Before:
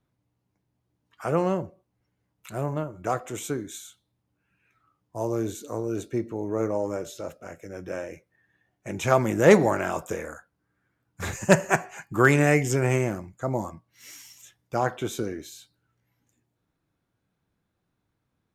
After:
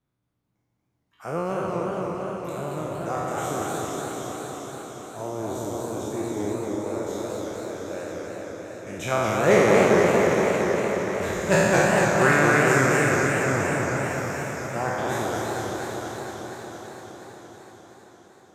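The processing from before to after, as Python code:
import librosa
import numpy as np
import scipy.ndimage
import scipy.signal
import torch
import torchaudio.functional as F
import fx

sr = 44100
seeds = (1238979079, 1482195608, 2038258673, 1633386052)

p1 = fx.spec_trails(x, sr, decay_s=2.43)
p2 = fx.over_compress(p1, sr, threshold_db=-28.0, ratio=-0.5, at=(6.28, 6.9), fade=0.02)
p3 = p2 + fx.echo_alternate(p2, sr, ms=400, hz=1400.0, feedback_pct=65, wet_db=-6.5, dry=0)
p4 = fx.echo_warbled(p3, sr, ms=232, feedback_pct=76, rate_hz=2.8, cents=170, wet_db=-3)
y = p4 * librosa.db_to_amplitude(-6.5)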